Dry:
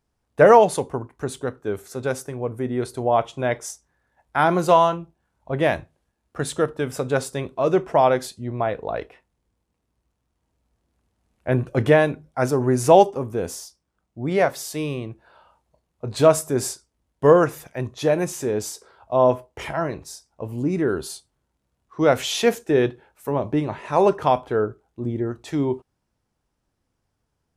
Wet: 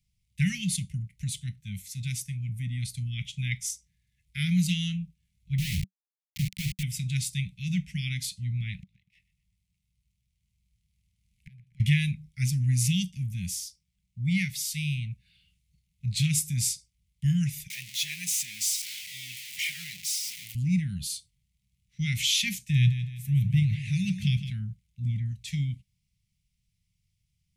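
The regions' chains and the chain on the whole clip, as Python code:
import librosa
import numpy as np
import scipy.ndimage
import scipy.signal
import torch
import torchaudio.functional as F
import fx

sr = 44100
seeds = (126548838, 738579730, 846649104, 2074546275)

y = fx.chain(x, sr, fx.ladder_lowpass(hz=1200.0, resonance_pct=35),
    fx.low_shelf(hz=220.0, db=9.5),
    fx.quant_companded(bits=2), at=(5.58, 6.83))
y = fx.chain(y, sr, fx.leveller(passes=1),
    fx.gate_flip(shuts_db=-23.0, range_db=-34),
    fx.echo_feedback(ms=122, feedback_pct=42, wet_db=-16.5), at=(8.81, 11.8))
y = fx.chain(y, sr, fx.zero_step(step_db=-28.5),
    fx.highpass(hz=510.0, slope=12), at=(17.7, 20.55))
y = fx.chain(y, sr, fx.peak_eq(hz=120.0, db=9.0, octaves=0.59),
    fx.echo_feedback(ms=161, feedback_pct=40, wet_db=-11.0), at=(22.58, 24.5))
y = scipy.signal.sosfilt(scipy.signal.cheby1(5, 1.0, [190.0, 2100.0], 'bandstop', fs=sr, output='sos'), y)
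y = fx.dynamic_eq(y, sr, hz=280.0, q=2.1, threshold_db=-50.0, ratio=4.0, max_db=6)
y = y * 10.0 ** (2.0 / 20.0)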